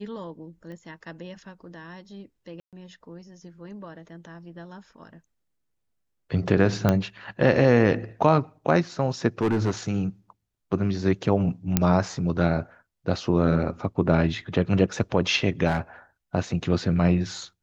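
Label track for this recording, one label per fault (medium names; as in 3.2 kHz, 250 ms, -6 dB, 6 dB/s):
0.720000	0.720000	pop -32 dBFS
2.600000	2.730000	dropout 127 ms
6.890000	6.890000	pop -8 dBFS
9.410000	9.710000	clipped -18.5 dBFS
11.770000	11.770000	pop -4 dBFS
15.670000	15.790000	clipped -18.5 dBFS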